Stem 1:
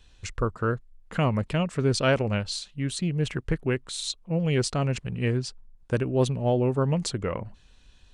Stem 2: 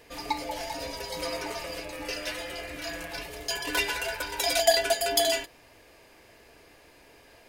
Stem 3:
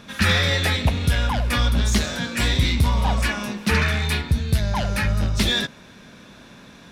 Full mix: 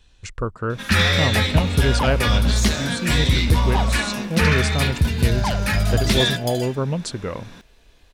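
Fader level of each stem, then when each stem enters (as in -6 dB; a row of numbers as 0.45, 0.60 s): +1.0, -7.5, +1.5 dB; 0.00, 1.30, 0.70 s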